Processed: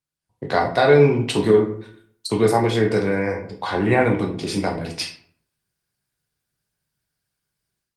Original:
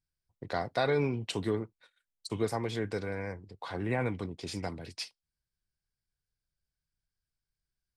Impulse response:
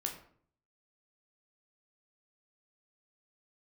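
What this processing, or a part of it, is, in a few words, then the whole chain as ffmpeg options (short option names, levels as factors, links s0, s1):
far-field microphone of a smart speaker: -filter_complex "[1:a]atrim=start_sample=2205[s0];[0:a][s0]afir=irnorm=-1:irlink=0,highpass=110,dynaudnorm=f=190:g=3:m=4.22,volume=1.19" -ar 48000 -c:a libopus -b:a 32k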